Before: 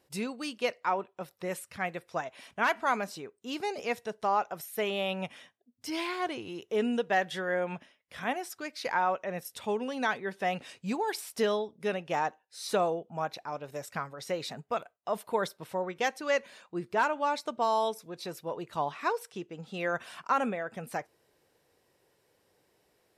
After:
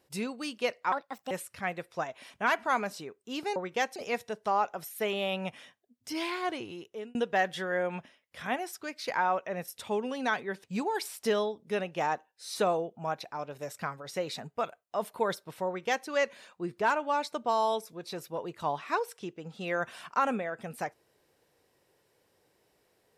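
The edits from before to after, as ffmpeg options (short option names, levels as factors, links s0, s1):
-filter_complex "[0:a]asplit=7[s0][s1][s2][s3][s4][s5][s6];[s0]atrim=end=0.924[s7];[s1]atrim=start=0.92:end=1.48,asetpts=PTS-STARTPTS,asetrate=63504,aresample=44100[s8];[s2]atrim=start=1.476:end=3.732[s9];[s3]atrim=start=15.798:end=16.202[s10];[s4]atrim=start=3.728:end=6.92,asetpts=PTS-STARTPTS,afade=t=out:st=2.672:d=0.52[s11];[s5]atrim=start=6.92:end=10.412,asetpts=PTS-STARTPTS,afade=t=in:d=0.004:c=hsin[s12];[s6]atrim=start=10.768[s13];[s7][s8]acrossfade=d=0.004:c1=hsin:c2=hsin[s14];[s14][s9]acrossfade=d=0.004:c1=hsin:c2=hsin[s15];[s15][s10]acrossfade=d=0.004:c1=hsin:c2=hsin[s16];[s11][s12]concat=n=2:v=0:a=1[s17];[s16][s17]acrossfade=d=0.004:c1=hsin:c2=hsin[s18];[s18][s13]acrossfade=d=0.004:c1=hsin:c2=hsin"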